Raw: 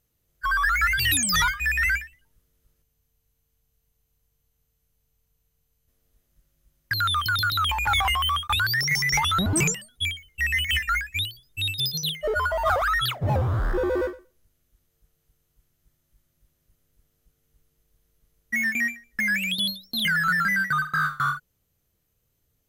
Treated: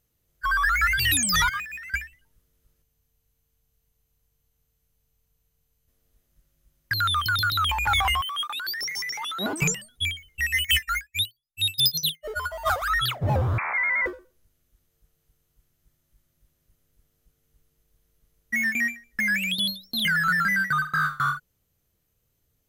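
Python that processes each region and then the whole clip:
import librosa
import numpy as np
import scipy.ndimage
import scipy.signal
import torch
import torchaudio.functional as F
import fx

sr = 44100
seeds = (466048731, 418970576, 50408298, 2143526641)

y = fx.chain(x, sr, fx.median_filter(points=3),
    fx.highpass(hz=100.0, slope=24),
    fx.over_compress(threshold_db=-36.0, ratio=-1.0), at=(1.49, 1.94))
y = fx.chain(y, sr, fx.highpass(hz=260.0, slope=24),
    fx.over_compress(threshold_db=-31.0, ratio=-1.0), at=(8.21, 9.62))
y = fx.chain(y, sr, fx.high_shelf(hz=3400.0, db=11.0),
    fx.upward_expand(threshold_db=-40.0, expansion=2.5), at=(10.41, 12.9))
y = fx.chain(y, sr, fx.highpass(hz=140.0, slope=24),
    fx.freq_invert(carrier_hz=2500),
    fx.env_flatten(amount_pct=50), at=(13.58, 14.06))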